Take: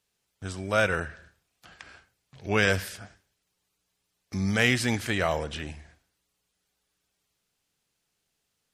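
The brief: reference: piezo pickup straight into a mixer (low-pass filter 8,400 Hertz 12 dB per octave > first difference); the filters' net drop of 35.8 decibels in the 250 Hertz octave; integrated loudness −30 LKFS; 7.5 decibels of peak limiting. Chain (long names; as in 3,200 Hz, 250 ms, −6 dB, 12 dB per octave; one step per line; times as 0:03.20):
parametric band 250 Hz −8.5 dB
brickwall limiter −16 dBFS
low-pass filter 8,400 Hz 12 dB per octave
first difference
level +12 dB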